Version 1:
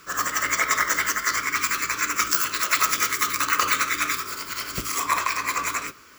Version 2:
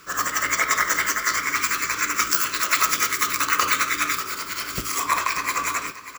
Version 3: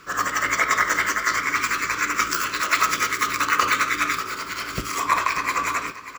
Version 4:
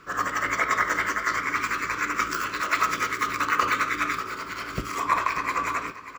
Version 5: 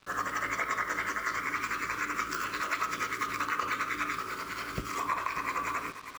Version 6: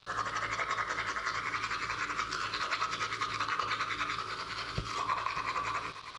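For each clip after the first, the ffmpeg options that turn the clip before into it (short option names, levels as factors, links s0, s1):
-af "aecho=1:1:590:0.2,volume=1.12"
-af "lowpass=f=3300:p=1,volume=1.33"
-af "highshelf=f=2800:g=-9.5,volume=0.891"
-af "acrusher=bits=6:mix=0:aa=0.5,acompressor=threshold=0.0501:ratio=2.5,volume=0.668"
-af "aresample=22050,aresample=44100,equalizer=f=125:t=o:w=1:g=5,equalizer=f=250:t=o:w=1:g=-10,equalizer=f=2000:t=o:w=1:g=-5,equalizer=f=4000:t=o:w=1:g=10,equalizer=f=8000:t=o:w=1:g=-9"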